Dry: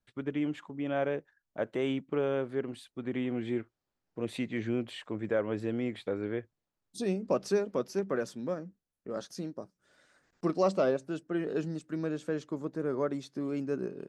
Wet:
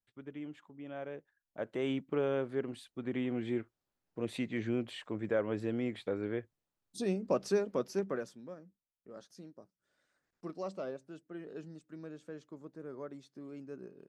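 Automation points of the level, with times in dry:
0:01.05 −12 dB
0:01.95 −2 dB
0:08.04 −2 dB
0:08.44 −13 dB

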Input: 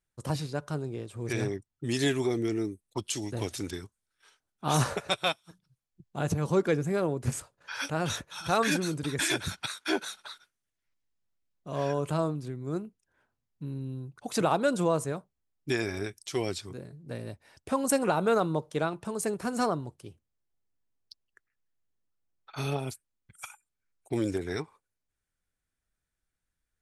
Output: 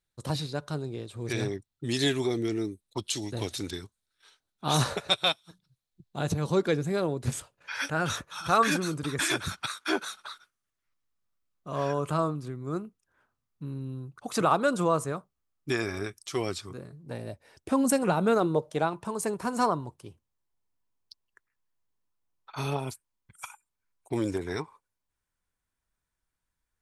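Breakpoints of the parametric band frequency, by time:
parametric band +9 dB 0.38 octaves
0:07.27 3,900 Hz
0:08.15 1,200 Hz
0:16.95 1,200 Hz
0:18.09 160 Hz
0:18.91 990 Hz

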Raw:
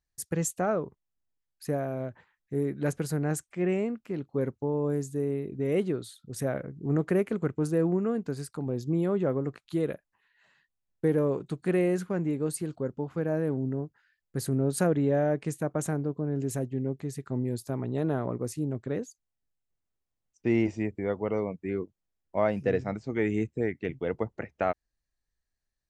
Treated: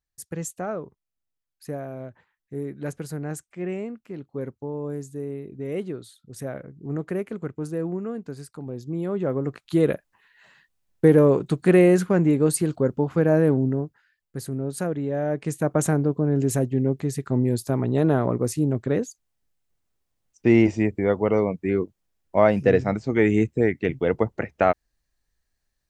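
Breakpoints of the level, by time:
0:08.90 −2.5 dB
0:09.90 +10 dB
0:13.49 +10 dB
0:14.47 −2 dB
0:15.10 −2 dB
0:15.74 +8.5 dB

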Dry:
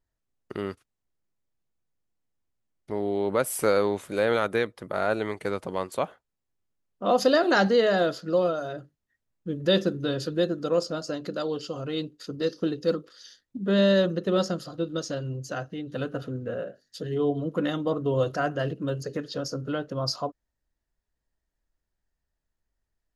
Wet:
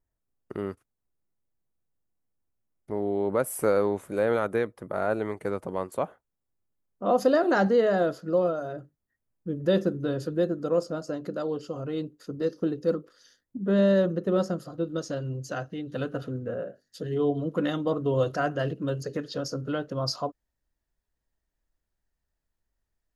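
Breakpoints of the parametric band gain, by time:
parametric band 3,900 Hz 1.9 octaves
0:14.62 −12 dB
0:15.45 −2 dB
0:16.34 −2 dB
0:16.56 −11 dB
0:17.25 −1.5 dB

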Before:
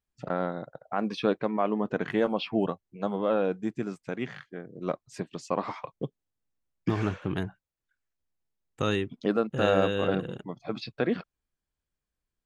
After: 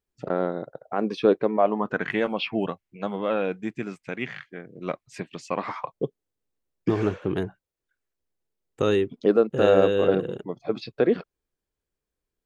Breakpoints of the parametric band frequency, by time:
parametric band +9.5 dB 0.94 octaves
0:01.48 400 Hz
0:02.11 2,300 Hz
0:05.62 2,300 Hz
0:06.03 420 Hz

